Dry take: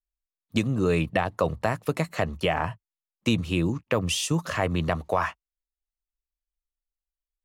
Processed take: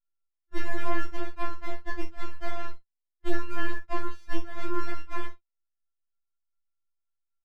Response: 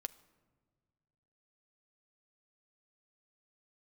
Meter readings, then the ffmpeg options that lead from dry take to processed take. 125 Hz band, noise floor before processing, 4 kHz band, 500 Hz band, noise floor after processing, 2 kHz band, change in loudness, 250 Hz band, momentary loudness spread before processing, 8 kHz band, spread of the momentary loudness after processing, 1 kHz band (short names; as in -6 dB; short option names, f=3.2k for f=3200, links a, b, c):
-13.5 dB, under -85 dBFS, -14.5 dB, -11.5 dB, -84 dBFS, -5.5 dB, -10.0 dB, -11.0 dB, 5 LU, -20.0 dB, 8 LU, -7.0 dB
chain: -af "aeval=exprs='val(0)*sin(2*PI*650*n/s)':c=same,lowpass=f=840:t=q:w=1.7,aeval=exprs='abs(val(0))':c=same,aecho=1:1:25|50:0.447|0.251,afftfilt=real='re*4*eq(mod(b,16),0)':imag='im*4*eq(mod(b,16),0)':win_size=2048:overlap=0.75,volume=-2.5dB"